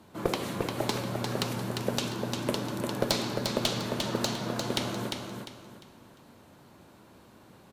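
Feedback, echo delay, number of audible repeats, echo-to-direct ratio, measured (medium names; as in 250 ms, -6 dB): 31%, 350 ms, 3, -4.5 dB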